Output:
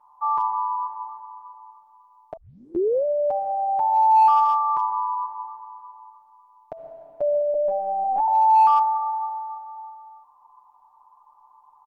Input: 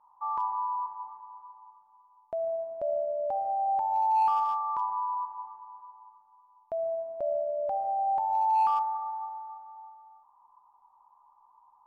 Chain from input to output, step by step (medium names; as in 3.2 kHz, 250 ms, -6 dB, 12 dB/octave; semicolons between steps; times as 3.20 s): comb 6.8 ms, depth 96%; 2.37 s: tape start 0.68 s; 7.54–8.28 s: LPC vocoder at 8 kHz pitch kept; trim +3.5 dB